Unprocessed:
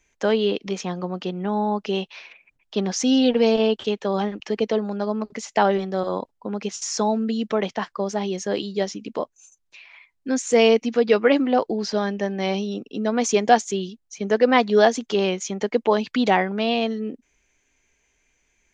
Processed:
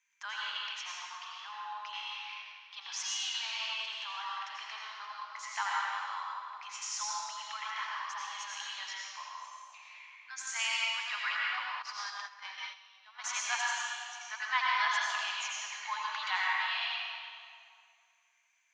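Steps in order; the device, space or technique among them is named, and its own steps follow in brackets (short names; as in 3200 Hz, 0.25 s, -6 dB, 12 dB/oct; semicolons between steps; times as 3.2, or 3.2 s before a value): elliptic high-pass 1000 Hz, stop band 50 dB; swimming-pool hall (reverb RT60 2.4 s, pre-delay 79 ms, DRR -5 dB; high shelf 3200 Hz -3.5 dB); 11.82–13.24 gate -30 dBFS, range -13 dB; gain -8.5 dB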